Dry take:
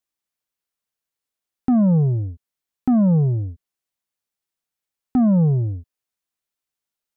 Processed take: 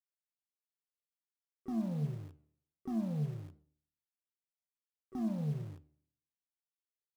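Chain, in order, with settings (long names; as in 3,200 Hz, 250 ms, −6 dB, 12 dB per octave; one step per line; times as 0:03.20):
tuned comb filter 75 Hz, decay 0.61 s, harmonics all, mix 80%
in parallel at −9 dB: bit reduction 6 bits
on the sum: pitch-shifted copies added +7 semitones −14 dB
flanger 1.4 Hz, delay 7 ms, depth 6.9 ms, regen −89%
level −9 dB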